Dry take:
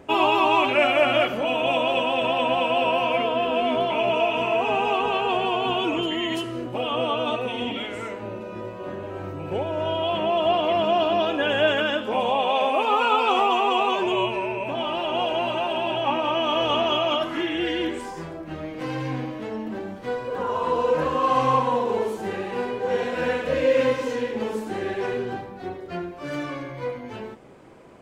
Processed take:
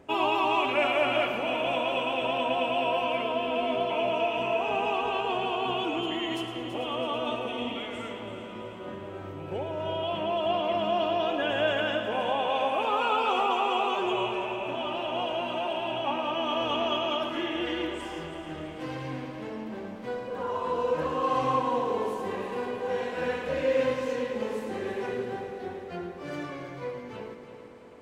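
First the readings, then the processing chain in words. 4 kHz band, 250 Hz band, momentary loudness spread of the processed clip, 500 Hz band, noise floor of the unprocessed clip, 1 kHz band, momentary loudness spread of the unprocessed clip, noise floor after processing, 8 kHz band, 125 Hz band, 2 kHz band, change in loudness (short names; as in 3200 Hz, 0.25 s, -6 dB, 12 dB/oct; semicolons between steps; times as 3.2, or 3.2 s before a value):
-5.5 dB, -5.5 dB, 12 LU, -5.5 dB, -37 dBFS, -5.5 dB, 13 LU, -41 dBFS, n/a, -6.0 dB, -5.5 dB, -5.5 dB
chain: multi-head echo 0.11 s, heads first and third, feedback 71%, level -12 dB; gain -6.5 dB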